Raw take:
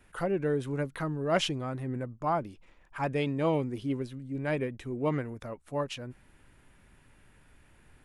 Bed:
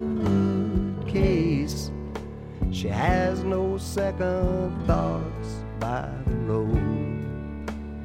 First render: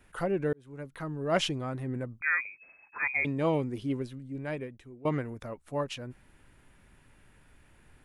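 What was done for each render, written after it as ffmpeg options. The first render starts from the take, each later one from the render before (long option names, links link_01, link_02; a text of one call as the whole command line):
ffmpeg -i in.wav -filter_complex "[0:a]asettb=1/sr,asplit=3[link_01][link_02][link_03];[link_01]atrim=end=2.214[link_04];[link_02]atrim=start=2.21:end=3.25,asetpts=PTS-STARTPTS,afade=type=in:duration=0.004:curve=qsin,afade=type=out:start_time=1.036:duration=0.004:curve=qsin,lowpass=frequency=2200:width_type=q:width=0.5098,lowpass=frequency=2200:width_type=q:width=0.6013,lowpass=frequency=2200:width_type=q:width=0.9,lowpass=frequency=2200:width_type=q:width=2.563,afreqshift=-2600[link_05];[link_03]atrim=start=3.246[link_06];[link_04][link_05]acrossfade=duration=0.004:curve1=hsin:curve2=qsin[link_07];[link_07][link_06]acrossfade=duration=0.004:curve1=qsin:curve2=hsin,asplit=3[link_08][link_09][link_10];[link_08]atrim=end=0.53,asetpts=PTS-STARTPTS,afade=type=out:start_time=0.526:duration=0.004:curve=hsin[link_11];[link_09]atrim=start=0.53:end=5.05,asetpts=PTS-STARTPTS,afade=type=in:duration=0.84,afade=type=out:start_time=3.48:duration=1.04:silence=0.11885[link_12];[link_10]atrim=start=5.05,asetpts=PTS-STARTPTS,afade=type=in:duration=0.004:curve=hsin:silence=0.11885[link_13];[link_11][link_12][link_13]concat=n=3:v=0:a=1" out.wav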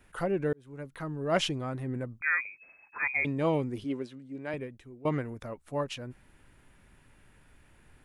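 ffmpeg -i in.wav -filter_complex "[0:a]asettb=1/sr,asplit=3[link_01][link_02][link_03];[link_01]atrim=end=3.844[link_04];[link_02]atrim=start=3.84:end=4.54,asetpts=PTS-STARTPTS,afade=type=in:duration=0.004:curve=qsin,afade=type=out:start_time=0.696:duration=0.004:curve=qsin,highpass=220,lowpass=8000[link_05];[link_03]atrim=start=4.536[link_06];[link_04][link_05]acrossfade=duration=0.004:curve1=hsin:curve2=qsin[link_07];[link_07][link_06]acrossfade=duration=0.004:curve1=qsin:curve2=hsin" out.wav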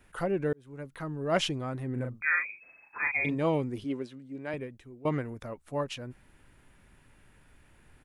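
ffmpeg -i in.wav -filter_complex "[0:a]asplit=3[link_01][link_02][link_03];[link_01]afade=type=out:start_time=1.96:duration=0.02[link_04];[link_02]asplit=2[link_05][link_06];[link_06]adelay=40,volume=-5dB[link_07];[link_05][link_07]amix=inputs=2:normalize=0,afade=type=in:start_time=1.96:duration=0.02,afade=type=out:start_time=3.34:duration=0.02[link_08];[link_03]afade=type=in:start_time=3.34:duration=0.02[link_09];[link_04][link_08][link_09]amix=inputs=3:normalize=0" out.wav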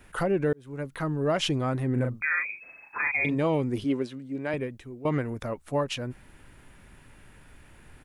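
ffmpeg -i in.wav -af "alimiter=limit=-24dB:level=0:latency=1:release=176,acontrast=86" out.wav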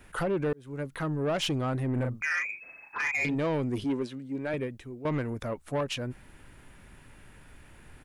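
ffmpeg -i in.wav -af "asoftclip=type=tanh:threshold=-23dB" out.wav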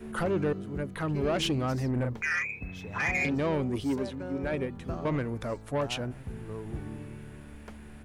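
ffmpeg -i in.wav -i bed.wav -filter_complex "[1:a]volume=-14dB[link_01];[0:a][link_01]amix=inputs=2:normalize=0" out.wav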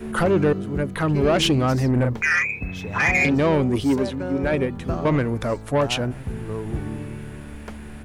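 ffmpeg -i in.wav -af "volume=9.5dB" out.wav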